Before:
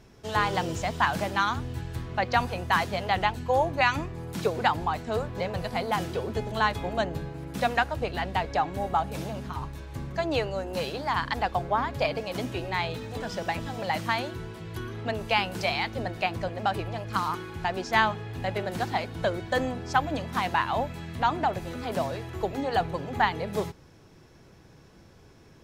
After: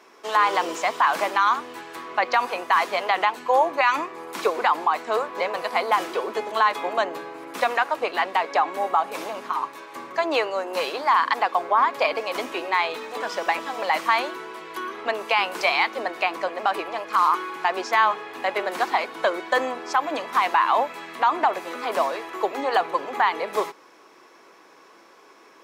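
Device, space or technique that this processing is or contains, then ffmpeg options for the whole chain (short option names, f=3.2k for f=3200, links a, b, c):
laptop speaker: -af "highpass=f=320:w=0.5412,highpass=f=320:w=1.3066,equalizer=f=1.1k:t=o:w=0.53:g=11,equalizer=f=2.2k:t=o:w=0.59:g=5,alimiter=limit=-13.5dB:level=0:latency=1:release=58,volume=4dB"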